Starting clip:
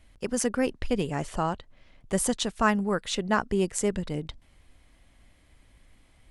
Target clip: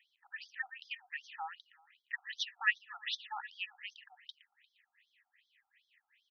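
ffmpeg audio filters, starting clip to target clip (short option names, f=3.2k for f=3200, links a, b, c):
-filter_complex "[0:a]asplit=3[a][b][c];[a]bandpass=f=530:t=q:w=8,volume=0dB[d];[b]bandpass=f=1.84k:t=q:w=8,volume=-6dB[e];[c]bandpass=f=2.48k:t=q:w=8,volume=-9dB[f];[d][e][f]amix=inputs=3:normalize=0,highshelf=f=8k:g=11,bandreject=f=1.5k:w=7.2,asplit=2[g][h];[h]aecho=0:1:117|234|351|468|585:0.178|0.0978|0.0538|0.0296|0.0163[i];[g][i]amix=inputs=2:normalize=0,afftfilt=real='re*between(b*sr/1024,990*pow(4600/990,0.5+0.5*sin(2*PI*2.6*pts/sr))/1.41,990*pow(4600/990,0.5+0.5*sin(2*PI*2.6*pts/sr))*1.41)':imag='im*between(b*sr/1024,990*pow(4600/990,0.5+0.5*sin(2*PI*2.6*pts/sr))/1.41,990*pow(4600/990,0.5+0.5*sin(2*PI*2.6*pts/sr))*1.41)':win_size=1024:overlap=0.75,volume=12.5dB"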